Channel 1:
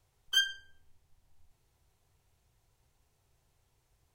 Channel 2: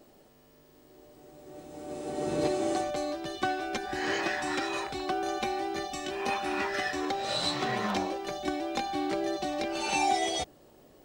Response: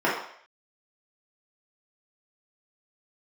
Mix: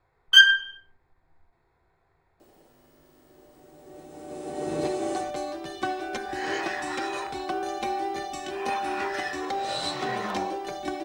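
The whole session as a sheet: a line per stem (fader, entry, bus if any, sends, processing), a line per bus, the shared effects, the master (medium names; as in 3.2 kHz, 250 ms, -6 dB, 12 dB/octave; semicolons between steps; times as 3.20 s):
+1.0 dB, 0.00 s, send -13.5 dB, local Wiener filter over 15 samples; peaking EQ 2.6 kHz +13.5 dB 1.8 oct; endings held to a fixed fall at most 520 dB/s
-1.5 dB, 2.40 s, send -23 dB, peaking EQ 9.4 kHz +3 dB 0.43 oct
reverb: on, RT60 0.60 s, pre-delay 3 ms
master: none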